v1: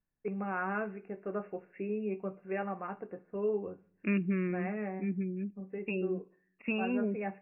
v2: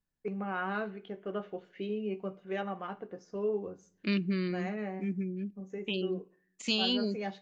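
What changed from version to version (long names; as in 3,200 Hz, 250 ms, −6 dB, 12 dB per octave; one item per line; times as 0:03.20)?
master: remove linear-phase brick-wall low-pass 2,800 Hz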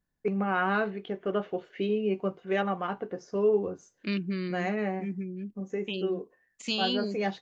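first voice +10.0 dB
reverb: off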